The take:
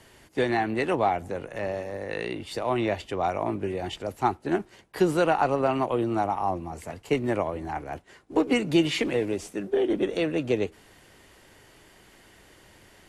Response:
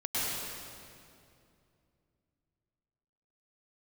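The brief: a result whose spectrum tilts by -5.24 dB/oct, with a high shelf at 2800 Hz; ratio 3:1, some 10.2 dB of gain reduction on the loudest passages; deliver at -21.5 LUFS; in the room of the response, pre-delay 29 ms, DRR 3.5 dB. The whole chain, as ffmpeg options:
-filter_complex "[0:a]highshelf=f=2.8k:g=-6.5,acompressor=threshold=-31dB:ratio=3,asplit=2[a][b];[1:a]atrim=start_sample=2205,adelay=29[c];[b][c]afir=irnorm=-1:irlink=0,volume=-12dB[d];[a][d]amix=inputs=2:normalize=0,volume=11.5dB"

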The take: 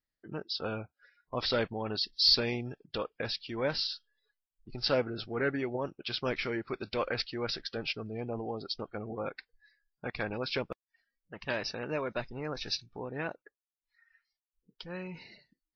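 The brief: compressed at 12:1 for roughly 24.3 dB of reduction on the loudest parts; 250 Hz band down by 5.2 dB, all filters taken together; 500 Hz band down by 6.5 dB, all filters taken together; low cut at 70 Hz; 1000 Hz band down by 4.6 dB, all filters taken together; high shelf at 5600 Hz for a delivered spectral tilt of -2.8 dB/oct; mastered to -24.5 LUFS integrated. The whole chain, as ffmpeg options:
-af "highpass=70,equalizer=f=250:t=o:g=-4.5,equalizer=f=500:t=o:g=-5.5,equalizer=f=1k:t=o:g=-4.5,highshelf=f=5.6k:g=3,acompressor=threshold=-44dB:ratio=12,volume=24dB"

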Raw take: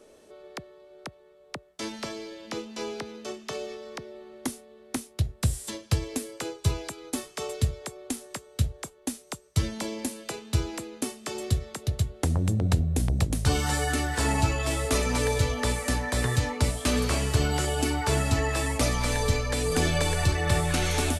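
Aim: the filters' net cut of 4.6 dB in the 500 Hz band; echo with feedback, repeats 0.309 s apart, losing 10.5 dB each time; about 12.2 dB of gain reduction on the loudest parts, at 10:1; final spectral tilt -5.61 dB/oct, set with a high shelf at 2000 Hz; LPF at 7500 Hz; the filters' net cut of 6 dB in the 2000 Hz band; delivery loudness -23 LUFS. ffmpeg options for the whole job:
-af "lowpass=7.5k,equalizer=f=500:t=o:g=-5,highshelf=f=2k:g=-7,equalizer=f=2k:t=o:g=-3,acompressor=threshold=-31dB:ratio=10,aecho=1:1:309|618|927:0.299|0.0896|0.0269,volume=15dB"

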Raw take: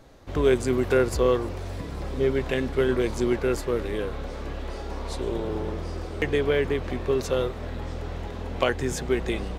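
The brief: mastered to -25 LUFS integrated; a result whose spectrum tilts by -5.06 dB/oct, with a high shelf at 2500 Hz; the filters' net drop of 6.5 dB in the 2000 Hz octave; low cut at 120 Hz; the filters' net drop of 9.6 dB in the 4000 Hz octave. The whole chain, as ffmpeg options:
-af "highpass=120,equalizer=f=2k:t=o:g=-4.5,highshelf=f=2.5k:g=-6.5,equalizer=f=4k:t=o:g=-5.5,volume=2dB"

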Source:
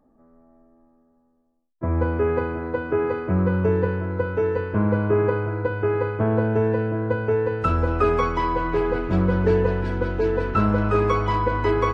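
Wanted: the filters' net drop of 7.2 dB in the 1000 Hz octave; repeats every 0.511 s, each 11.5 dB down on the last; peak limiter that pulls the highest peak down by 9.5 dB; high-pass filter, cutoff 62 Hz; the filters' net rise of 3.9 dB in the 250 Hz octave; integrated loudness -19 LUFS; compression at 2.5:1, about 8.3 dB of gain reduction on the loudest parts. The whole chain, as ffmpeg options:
-af "highpass=62,equalizer=f=250:t=o:g=6,equalizer=f=1k:t=o:g=-9,acompressor=threshold=-27dB:ratio=2.5,alimiter=limit=-24dB:level=0:latency=1,aecho=1:1:511|1022|1533:0.266|0.0718|0.0194,volume=12.5dB"

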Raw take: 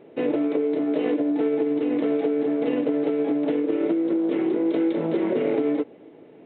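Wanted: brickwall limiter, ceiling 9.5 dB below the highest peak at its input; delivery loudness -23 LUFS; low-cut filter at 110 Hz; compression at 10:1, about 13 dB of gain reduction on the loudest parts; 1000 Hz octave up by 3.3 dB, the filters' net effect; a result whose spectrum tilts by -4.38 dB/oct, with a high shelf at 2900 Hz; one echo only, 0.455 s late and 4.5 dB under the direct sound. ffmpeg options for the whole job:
-af "highpass=110,equalizer=f=1k:t=o:g=5.5,highshelf=f=2.9k:g=-6.5,acompressor=threshold=-32dB:ratio=10,alimiter=level_in=8.5dB:limit=-24dB:level=0:latency=1,volume=-8.5dB,aecho=1:1:455:0.596,volume=16dB"

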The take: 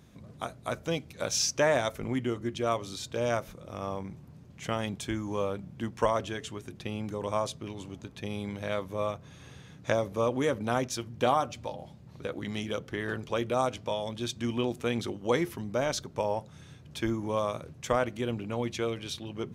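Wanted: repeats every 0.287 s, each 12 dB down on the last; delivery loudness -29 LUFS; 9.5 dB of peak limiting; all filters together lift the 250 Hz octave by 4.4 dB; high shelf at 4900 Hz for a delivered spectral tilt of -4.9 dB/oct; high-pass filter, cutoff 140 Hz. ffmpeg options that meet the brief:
-af "highpass=140,equalizer=f=250:t=o:g=6,highshelf=f=4.9k:g=-4,alimiter=limit=-18.5dB:level=0:latency=1,aecho=1:1:287|574|861:0.251|0.0628|0.0157,volume=3dB"

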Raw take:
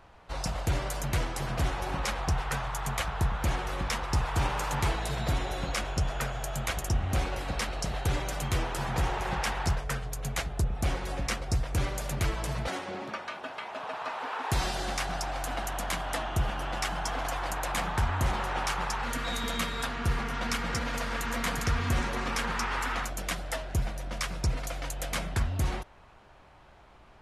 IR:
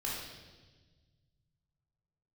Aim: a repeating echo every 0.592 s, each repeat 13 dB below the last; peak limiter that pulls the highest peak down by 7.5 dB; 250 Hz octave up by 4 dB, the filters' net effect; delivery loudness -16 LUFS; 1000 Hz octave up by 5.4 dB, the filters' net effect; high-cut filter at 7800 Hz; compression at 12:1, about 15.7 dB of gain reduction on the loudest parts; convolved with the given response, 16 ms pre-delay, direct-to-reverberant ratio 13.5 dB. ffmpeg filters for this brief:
-filter_complex "[0:a]lowpass=7.8k,equalizer=f=250:t=o:g=5,equalizer=f=1k:t=o:g=6.5,acompressor=threshold=-38dB:ratio=12,alimiter=level_in=9dB:limit=-24dB:level=0:latency=1,volume=-9dB,aecho=1:1:592|1184|1776:0.224|0.0493|0.0108,asplit=2[a][b];[1:a]atrim=start_sample=2205,adelay=16[c];[b][c]afir=irnorm=-1:irlink=0,volume=-16.5dB[d];[a][d]amix=inputs=2:normalize=0,volume=27dB"

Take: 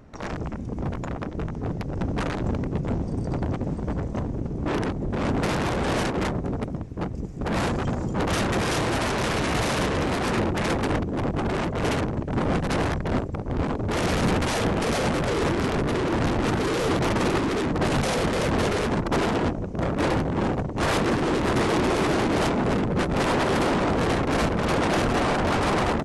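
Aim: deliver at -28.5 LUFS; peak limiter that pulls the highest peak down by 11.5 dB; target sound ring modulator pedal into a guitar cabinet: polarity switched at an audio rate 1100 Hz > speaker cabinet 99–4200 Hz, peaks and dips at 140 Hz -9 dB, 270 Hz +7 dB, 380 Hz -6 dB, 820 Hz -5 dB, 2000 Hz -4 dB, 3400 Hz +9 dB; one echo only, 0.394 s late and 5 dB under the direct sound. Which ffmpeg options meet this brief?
-af "alimiter=level_in=5dB:limit=-24dB:level=0:latency=1,volume=-5dB,aecho=1:1:394:0.562,aeval=exprs='val(0)*sgn(sin(2*PI*1100*n/s))':c=same,highpass=99,equalizer=f=140:t=q:w=4:g=-9,equalizer=f=270:t=q:w=4:g=7,equalizer=f=380:t=q:w=4:g=-6,equalizer=f=820:t=q:w=4:g=-5,equalizer=f=2k:t=q:w=4:g=-4,equalizer=f=3.4k:t=q:w=4:g=9,lowpass=f=4.2k:w=0.5412,lowpass=f=4.2k:w=1.3066,volume=3dB"

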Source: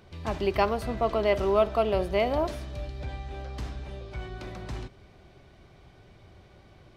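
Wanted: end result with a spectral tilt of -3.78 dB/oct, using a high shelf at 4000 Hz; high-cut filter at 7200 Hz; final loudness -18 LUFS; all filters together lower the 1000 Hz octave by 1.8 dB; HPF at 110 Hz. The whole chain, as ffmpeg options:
-af "highpass=110,lowpass=7.2k,equalizer=f=1k:t=o:g=-3,highshelf=f=4k:g=7,volume=10.5dB"

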